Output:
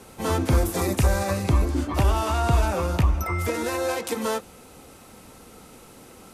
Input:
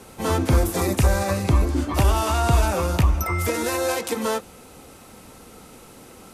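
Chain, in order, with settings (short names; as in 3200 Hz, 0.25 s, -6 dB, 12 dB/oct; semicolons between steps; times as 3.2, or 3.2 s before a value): 1.87–4.07 high shelf 4600 Hz -5.5 dB; gain -2 dB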